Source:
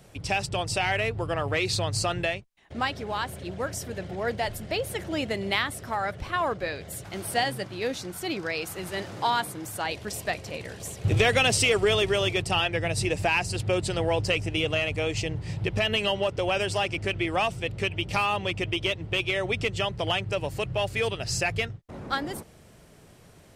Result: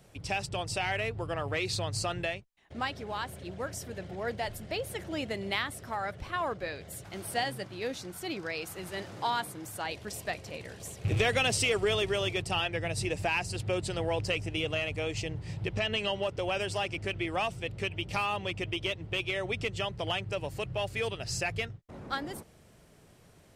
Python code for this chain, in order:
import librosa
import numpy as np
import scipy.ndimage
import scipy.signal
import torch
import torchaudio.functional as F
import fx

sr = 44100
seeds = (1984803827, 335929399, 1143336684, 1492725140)

y = fx.rattle_buzz(x, sr, strikes_db=-23.0, level_db=-28.0)
y = fx.lowpass(y, sr, hz=8600.0, slope=24, at=(15.73, 16.13))
y = F.gain(torch.from_numpy(y), -5.5).numpy()